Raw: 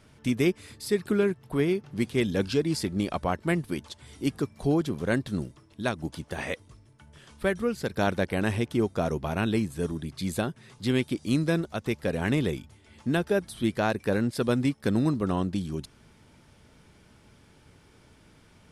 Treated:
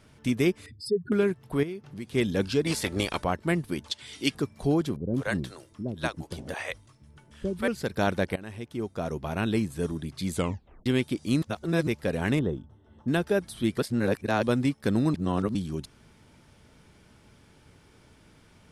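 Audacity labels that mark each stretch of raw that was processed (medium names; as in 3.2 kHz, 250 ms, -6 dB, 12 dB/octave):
0.660000	1.120000	spectral contrast enhancement exponent 3
1.630000	2.130000	compression 2:1, threshold -41 dBFS
2.650000	3.230000	spectral peaks clipped ceiling under each frame's peak by 17 dB
3.910000	4.350000	frequency weighting D
4.960000	7.680000	bands offset in time lows, highs 180 ms, split 480 Hz
8.360000	9.580000	fade in, from -18.5 dB
10.330000	10.330000	tape stop 0.53 s
11.420000	11.870000	reverse
12.390000	13.080000	boxcar filter over 19 samples
13.780000	14.430000	reverse
15.140000	15.550000	reverse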